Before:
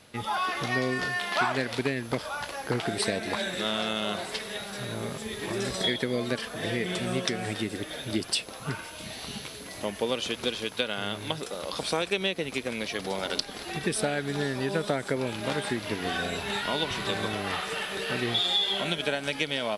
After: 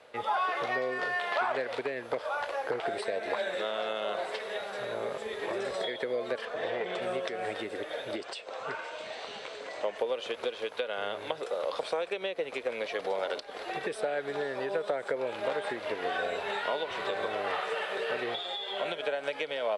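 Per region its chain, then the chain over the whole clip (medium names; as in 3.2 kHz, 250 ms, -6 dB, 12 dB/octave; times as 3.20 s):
6.45–7.02 s: low-pass 6.8 kHz + transformer saturation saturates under 780 Hz
8.16–9.98 s: steep low-pass 8.8 kHz 48 dB/octave + bass shelf 210 Hz -8.5 dB + upward compressor, threshold -34 dBFS
whole clip: ten-band graphic EQ 500 Hz +10 dB, 4 kHz +6 dB, 8 kHz +10 dB; compression, threshold -23 dBFS; three-band isolator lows -16 dB, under 460 Hz, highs -22 dB, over 2.4 kHz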